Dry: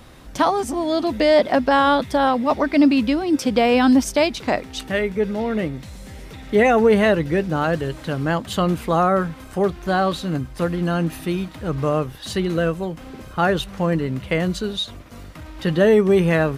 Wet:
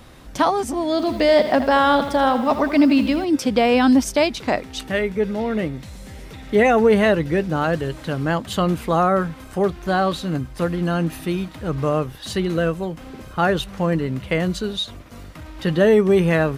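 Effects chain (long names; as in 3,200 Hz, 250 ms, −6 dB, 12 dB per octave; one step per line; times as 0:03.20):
0:00.91–0:03.25: feedback echo at a low word length 81 ms, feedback 55%, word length 7 bits, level −11 dB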